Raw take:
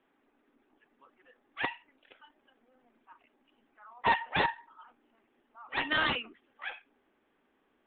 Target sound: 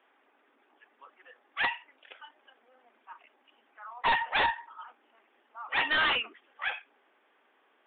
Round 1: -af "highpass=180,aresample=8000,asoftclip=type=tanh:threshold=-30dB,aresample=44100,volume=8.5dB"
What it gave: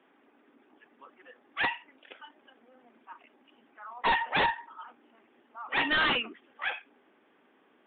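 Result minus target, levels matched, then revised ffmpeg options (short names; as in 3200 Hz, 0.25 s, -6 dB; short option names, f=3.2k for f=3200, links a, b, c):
250 Hz band +8.0 dB
-af "highpass=570,aresample=8000,asoftclip=type=tanh:threshold=-30dB,aresample=44100,volume=8.5dB"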